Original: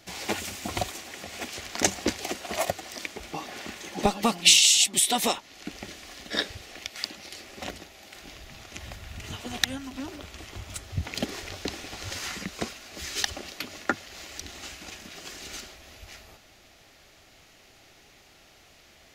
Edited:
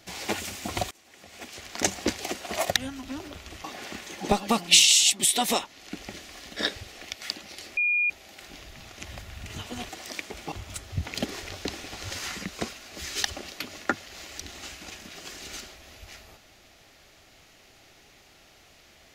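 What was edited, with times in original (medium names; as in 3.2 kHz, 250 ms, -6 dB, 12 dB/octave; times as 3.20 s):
0.91–2.08 s: fade in, from -23 dB
2.75–3.38 s: swap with 9.63–10.52 s
7.51–7.84 s: bleep 2.43 kHz -21 dBFS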